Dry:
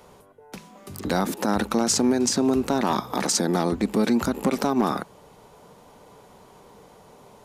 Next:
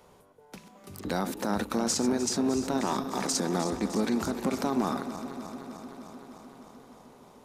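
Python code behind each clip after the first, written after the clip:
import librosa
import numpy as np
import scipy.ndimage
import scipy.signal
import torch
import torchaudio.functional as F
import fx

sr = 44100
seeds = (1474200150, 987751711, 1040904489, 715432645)

y = fx.reverse_delay_fb(x, sr, ms=152, feedback_pct=85, wet_db=-12.5)
y = y * librosa.db_to_amplitude(-6.5)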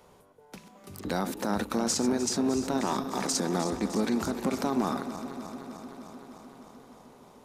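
y = x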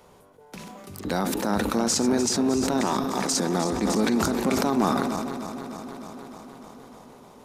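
y = fx.sustainer(x, sr, db_per_s=22.0)
y = y * librosa.db_to_amplitude(3.5)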